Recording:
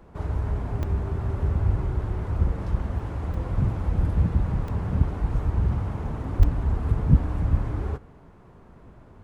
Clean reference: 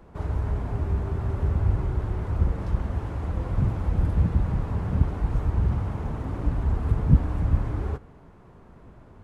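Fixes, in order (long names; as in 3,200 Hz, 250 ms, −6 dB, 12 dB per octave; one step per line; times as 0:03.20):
0:06.38–0:06.50: high-pass filter 140 Hz 24 dB per octave
repair the gap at 0:00.83/0:02.99/0:03.34/0:04.68/0:06.43, 3.3 ms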